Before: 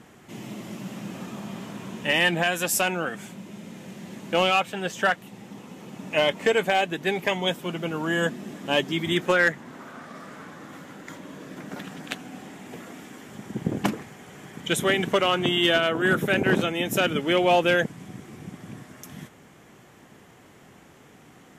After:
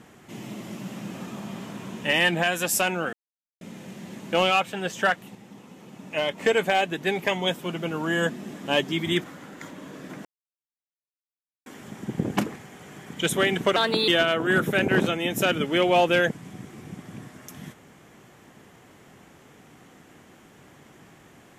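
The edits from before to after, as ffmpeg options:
-filter_complex "[0:a]asplit=10[s0][s1][s2][s3][s4][s5][s6][s7][s8][s9];[s0]atrim=end=3.13,asetpts=PTS-STARTPTS,afade=t=out:st=3.126:d=0.004:c=hsin[s10];[s1]atrim=start=3.13:end=3.61,asetpts=PTS-STARTPTS,volume=0[s11];[s2]atrim=start=3.61:end=5.352,asetpts=PTS-STARTPTS,afade=t=in:d=0.004:c=hsin[s12];[s3]atrim=start=5.348:end=6.382,asetpts=PTS-STARTPTS,volume=0.596[s13];[s4]atrim=start=6.378:end=9.242[s14];[s5]atrim=start=10.708:end=11.72,asetpts=PTS-STARTPTS,afade=t=out:st=1.008:d=0.004:c=hsin[s15];[s6]atrim=start=11.72:end=13.13,asetpts=PTS-STARTPTS,volume=0[s16];[s7]atrim=start=13.13:end=15.234,asetpts=PTS-STARTPTS,afade=t=in:d=0.004:c=hsin[s17];[s8]atrim=start=15.23:end=15.63,asetpts=PTS-STARTPTS,asetrate=55125,aresample=44100[s18];[s9]atrim=start=15.626[s19];[s10][s11][s12]concat=n=3:v=0:a=1[s20];[s20][s13]acrossfade=d=0.004:c1=hsin:c2=hsin[s21];[s21][s14]acrossfade=d=0.004:c1=hsin:c2=hsin[s22];[s15][s16][s17]concat=n=3:v=0:a=1[s23];[s22][s23]acrossfade=d=0.004:c1=hsin:c2=hsin[s24];[s24][s18]acrossfade=d=0.004:c1=hsin:c2=hsin[s25];[s25][s19]acrossfade=d=0.004:c1=hsin:c2=hsin"

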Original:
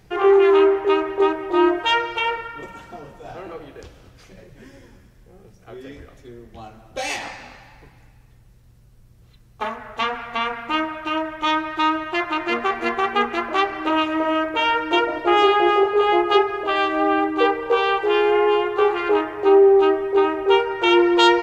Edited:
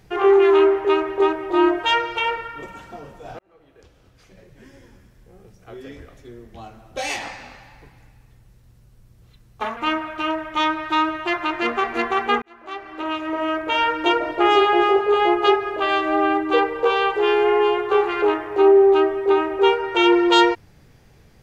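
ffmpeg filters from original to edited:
-filter_complex "[0:a]asplit=4[s0][s1][s2][s3];[s0]atrim=end=3.39,asetpts=PTS-STARTPTS,afade=t=out:st=3.386:d=0.004:c=hsin[s4];[s1]atrim=start=3.39:end=9.772,asetpts=PTS-STARTPTS,afade=t=in:d=2.39:c=qsin[s5];[s2]atrim=start=10.638:end=13.29,asetpts=PTS-STARTPTS,afade=t=out:st=2.648:d=0.004:c=hsin[s6];[s3]atrim=start=13.29,asetpts=PTS-STARTPTS,afade=t=in:d=1.41[s7];[s4][s5]concat=n=2:v=0:a=1[s8];[s6][s7]concat=n=2:v=0:a=1[s9];[s8][s9]acrossfade=d=0.004:c1=hsin:c2=hsin"

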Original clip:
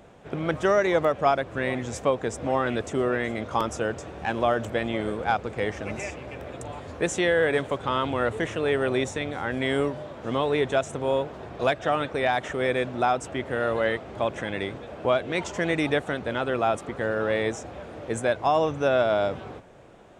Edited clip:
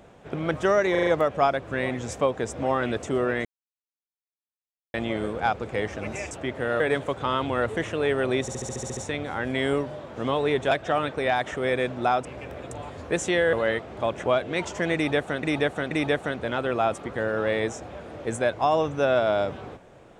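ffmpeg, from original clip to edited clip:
-filter_complex "[0:a]asplit=23[s0][s1][s2][s3][s4][s5][s6][s7][s8][s9][s10][s11][s12][s13][s14][s15][s16][s17][s18][s19][s20][s21][s22];[s0]atrim=end=0.952[s23];[s1]atrim=start=0.908:end=0.952[s24];[s2]atrim=start=0.908:end=0.952[s25];[s3]atrim=start=0.908:end=0.952[s26];[s4]atrim=start=0.908:end=3.29,asetpts=PTS-STARTPTS,afade=t=out:st=2.378:d=0.004:c=hsin[s27];[s5]atrim=start=3.29:end=4.78,asetpts=PTS-STARTPTS,volume=0[s28];[s6]atrim=start=4.78:end=6.152,asetpts=PTS-STARTPTS,afade=t=in:d=0.004:c=hsin[s29];[s7]atrim=start=13.218:end=13.712[s30];[s8]atrim=start=7.428:end=9.112[s31];[s9]atrim=start=9.038:end=9.112[s32];[s10]atrim=start=9.038:end=9.112[s33];[s11]atrim=start=9.038:end=9.112[s34];[s12]atrim=start=9.038:end=9.112[s35];[s13]atrim=start=9.038:end=9.112[s36];[s14]atrim=start=9.038:end=9.112[s37];[s15]atrim=start=9.038:end=9.112[s38];[s16]atrim=start=9.038:end=10.782[s39];[s17]atrim=start=11.678:end=13.222[s40];[s18]atrim=start=6.148:end=7.432[s41];[s19]atrim=start=13.708:end=14.422[s42];[s20]atrim=start=15.028:end=16.222[s43];[s21]atrim=start=15.738:end=16.222[s44];[s22]atrim=start=15.738[s45];[s23][s24]acrossfade=d=0.004:c1=hsin:c2=hsin[s46];[s46][s25]acrossfade=d=0.004:c1=hsin:c2=hsin[s47];[s47][s26]acrossfade=d=0.004:c1=hsin:c2=hsin[s48];[s27][s28][s29]concat=n=3:v=0:a=1[s49];[s48][s49]acrossfade=d=0.004:c1=hsin:c2=hsin[s50];[s50][s30]acrossfade=d=0.004:c1=hsin:c2=hsin[s51];[s51][s31]acrossfade=d=0.004:c1=hsin:c2=hsin[s52];[s52][s32]acrossfade=d=0.004:c1=hsin:c2=hsin[s53];[s53][s33]acrossfade=d=0.004:c1=hsin:c2=hsin[s54];[s54][s34]acrossfade=d=0.004:c1=hsin:c2=hsin[s55];[s55][s35]acrossfade=d=0.004:c1=hsin:c2=hsin[s56];[s56][s36]acrossfade=d=0.004:c1=hsin:c2=hsin[s57];[s57][s37]acrossfade=d=0.004:c1=hsin:c2=hsin[s58];[s58][s38]acrossfade=d=0.004:c1=hsin:c2=hsin[s59];[s59][s39]acrossfade=d=0.004:c1=hsin:c2=hsin[s60];[s60][s40]acrossfade=d=0.004:c1=hsin:c2=hsin[s61];[s61][s41]acrossfade=d=0.004:c1=hsin:c2=hsin[s62];[s62][s42]acrossfade=d=0.004:c1=hsin:c2=hsin[s63];[s63][s43]acrossfade=d=0.004:c1=hsin:c2=hsin[s64];[s64][s44]acrossfade=d=0.004:c1=hsin:c2=hsin[s65];[s65][s45]acrossfade=d=0.004:c1=hsin:c2=hsin"

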